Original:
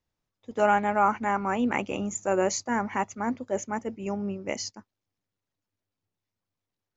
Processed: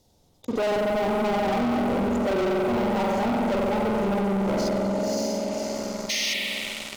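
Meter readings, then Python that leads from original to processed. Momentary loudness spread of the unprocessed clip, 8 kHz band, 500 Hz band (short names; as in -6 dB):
10 LU, n/a, +6.0 dB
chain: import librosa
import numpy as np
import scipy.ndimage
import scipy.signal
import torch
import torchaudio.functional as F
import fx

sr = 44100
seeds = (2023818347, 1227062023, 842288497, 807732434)

y = fx.band_shelf(x, sr, hz=1700.0, db=-14.0, octaves=1.7)
y = fx.echo_diffused(y, sr, ms=569, feedback_pct=41, wet_db=-11.5)
y = fx.spec_paint(y, sr, seeds[0], shape='noise', start_s=6.09, length_s=0.25, low_hz=1800.0, high_hz=6600.0, level_db=-40.0)
y = fx.env_lowpass_down(y, sr, base_hz=510.0, full_db=-23.0)
y = 10.0 ** (-19.0 / 20.0) * np.tanh(y / 10.0 ** (-19.0 / 20.0))
y = fx.low_shelf(y, sr, hz=110.0, db=-7.0)
y = fx.rev_spring(y, sr, rt60_s=2.5, pass_ms=(46,), chirp_ms=80, drr_db=-2.5)
y = fx.leveller(y, sr, passes=5)
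y = fx.notch(y, sr, hz=1700.0, q=9.5)
y = fx.env_flatten(y, sr, amount_pct=50)
y = y * 10.0 ** (-6.5 / 20.0)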